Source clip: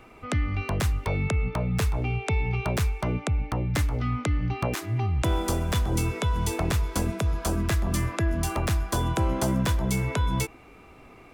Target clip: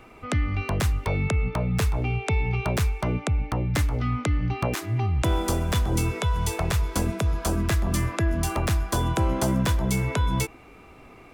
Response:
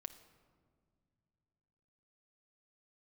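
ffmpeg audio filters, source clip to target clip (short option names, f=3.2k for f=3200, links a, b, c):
-filter_complex "[0:a]asettb=1/sr,asplit=3[a][b][c];[a]atrim=end=6.224[d];[b]atrim=start=6.22:end=6.8,asetpts=PTS-STARTPTS,afade=t=in:d=0.004:c=qsin,afade=t=out:st=0.576:d=0.004:c=qsin,equalizer=f=270:t=o:w=0.47:g=-14.5[e];[c]atrim=start=6.796[f];[d][e]acrossfade=d=0.004:c1=hsin:c2=qsin[g];[g][f]acrossfade=d=0.004:c1=qsin:c2=hsin,volume=1.5dB"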